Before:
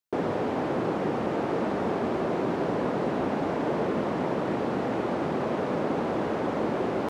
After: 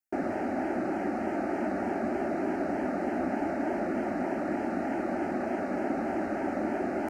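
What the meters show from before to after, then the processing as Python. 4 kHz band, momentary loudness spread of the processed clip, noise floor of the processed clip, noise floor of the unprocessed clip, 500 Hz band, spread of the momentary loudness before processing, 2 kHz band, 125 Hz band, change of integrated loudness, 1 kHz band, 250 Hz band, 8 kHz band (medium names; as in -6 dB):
under -10 dB, 1 LU, -33 dBFS, -30 dBFS, -4.5 dB, 1 LU, -1.0 dB, -9.0 dB, -3.0 dB, -3.0 dB, -1.5 dB, no reading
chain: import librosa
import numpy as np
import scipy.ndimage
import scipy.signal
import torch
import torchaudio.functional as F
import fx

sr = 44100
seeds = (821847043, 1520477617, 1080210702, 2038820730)

y = fx.fixed_phaser(x, sr, hz=700.0, stages=8)
y = fx.vibrato(y, sr, rate_hz=3.3, depth_cents=65.0)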